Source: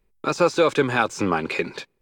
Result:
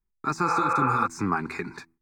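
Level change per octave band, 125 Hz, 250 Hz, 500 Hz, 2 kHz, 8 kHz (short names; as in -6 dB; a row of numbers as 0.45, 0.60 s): -1.0, -4.0, -13.5, -6.5, -6.0 dB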